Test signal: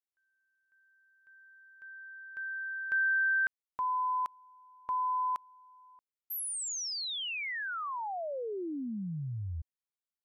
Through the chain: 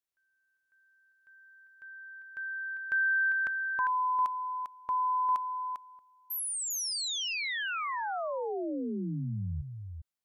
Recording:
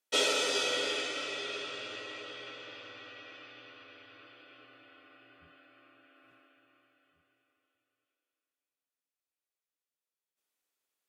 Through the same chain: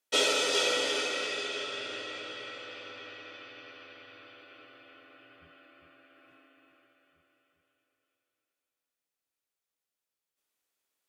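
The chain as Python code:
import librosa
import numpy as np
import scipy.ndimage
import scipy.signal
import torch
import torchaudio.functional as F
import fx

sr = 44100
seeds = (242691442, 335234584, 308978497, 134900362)

y = x + 10.0 ** (-7.0 / 20.0) * np.pad(x, (int(399 * sr / 1000.0), 0))[:len(x)]
y = F.gain(torch.from_numpy(y), 2.0).numpy()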